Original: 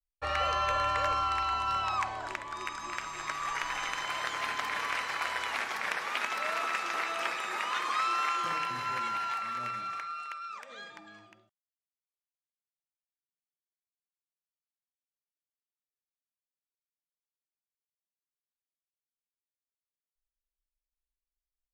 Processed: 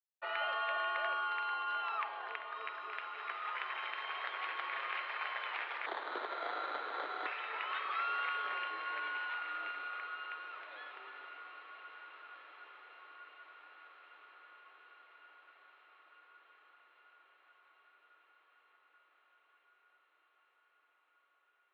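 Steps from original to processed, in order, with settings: 5.86–7.26 sample-rate reducer 2600 Hz, jitter 0%; diffused feedback echo 1.699 s, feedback 61%, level -12.5 dB; mistuned SSB +76 Hz 280–3500 Hz; gain -6.5 dB

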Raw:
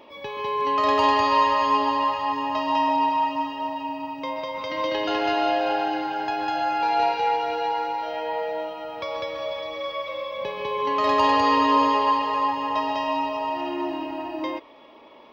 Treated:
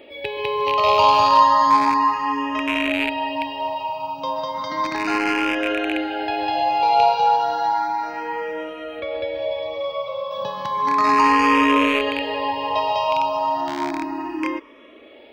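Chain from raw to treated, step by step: rattling part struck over -35 dBFS, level -16 dBFS; 9–10.31 high shelf 2400 Hz -9.5 dB; endless phaser +0.33 Hz; gain +6.5 dB

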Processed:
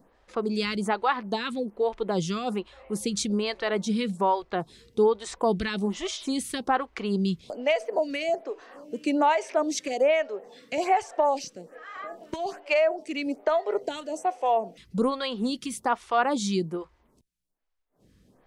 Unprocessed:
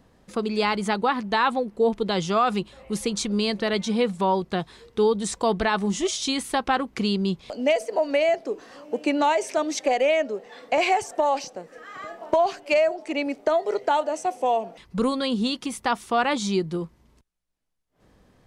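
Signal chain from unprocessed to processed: photocell phaser 1.2 Hz

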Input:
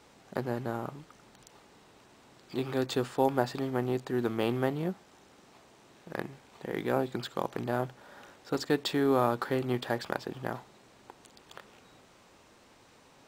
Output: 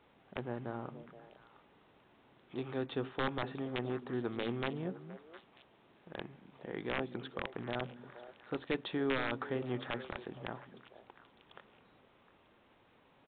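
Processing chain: wrapped overs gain 16.5 dB; downsampling 8000 Hz; delay with a stepping band-pass 0.236 s, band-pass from 200 Hz, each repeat 1.4 oct, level -8 dB; gain -7 dB

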